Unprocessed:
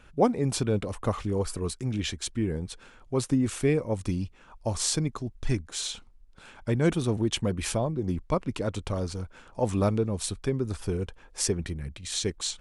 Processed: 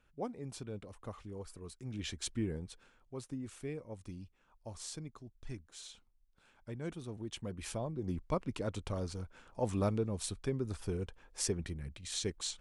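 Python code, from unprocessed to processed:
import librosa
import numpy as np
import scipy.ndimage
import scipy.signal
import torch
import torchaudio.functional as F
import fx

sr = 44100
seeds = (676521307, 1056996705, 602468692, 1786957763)

y = fx.gain(x, sr, db=fx.line((1.66, -17.5), (2.28, -5.5), (3.21, -17.5), (7.12, -17.5), (8.18, -7.5)))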